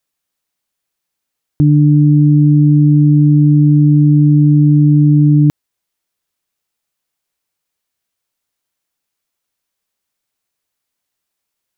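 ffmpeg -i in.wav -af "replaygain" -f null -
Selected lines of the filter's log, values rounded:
track_gain = -4.8 dB
track_peak = 0.461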